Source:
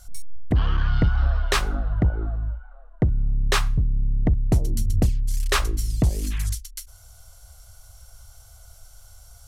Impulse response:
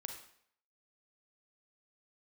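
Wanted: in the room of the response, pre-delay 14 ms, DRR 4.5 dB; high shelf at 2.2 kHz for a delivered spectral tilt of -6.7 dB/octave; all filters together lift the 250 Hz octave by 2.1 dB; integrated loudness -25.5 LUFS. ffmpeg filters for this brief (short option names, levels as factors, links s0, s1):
-filter_complex "[0:a]equalizer=f=250:t=o:g=3,highshelf=f=2200:g=-8,asplit=2[s0][s1];[1:a]atrim=start_sample=2205,adelay=14[s2];[s1][s2]afir=irnorm=-1:irlink=0,volume=0.794[s3];[s0][s3]amix=inputs=2:normalize=0,volume=0.75"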